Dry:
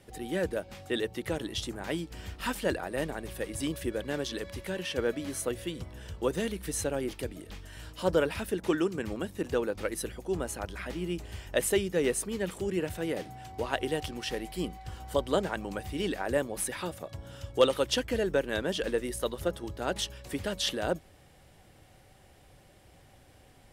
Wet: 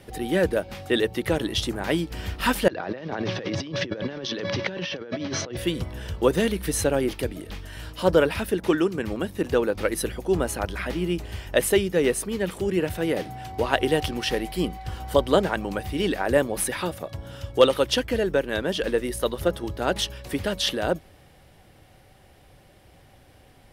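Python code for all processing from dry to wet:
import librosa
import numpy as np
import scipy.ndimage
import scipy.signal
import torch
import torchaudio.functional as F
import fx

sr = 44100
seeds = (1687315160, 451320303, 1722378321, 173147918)

y = fx.chain(x, sr, fx.cheby1_bandpass(low_hz=100.0, high_hz=5900.0, order=5),
    fx.over_compress(threshold_db=-43.0, ratio=-1.0), at=(2.68, 5.57))
y = fx.rider(y, sr, range_db=5, speed_s=2.0)
y = fx.peak_eq(y, sr, hz=7500.0, db=-5.5, octaves=0.6)
y = y * librosa.db_to_amplitude(7.0)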